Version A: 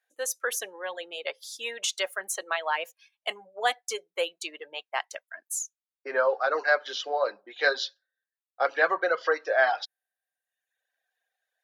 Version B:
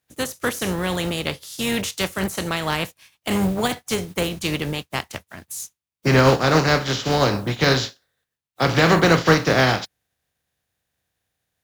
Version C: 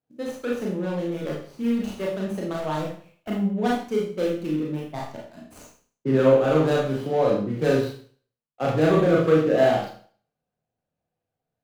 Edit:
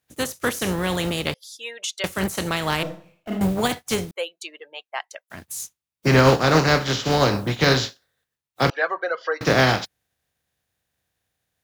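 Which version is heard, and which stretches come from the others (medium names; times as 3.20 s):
B
1.34–2.04 s: from A
2.83–3.41 s: from C
4.11–5.30 s: from A
8.70–9.41 s: from A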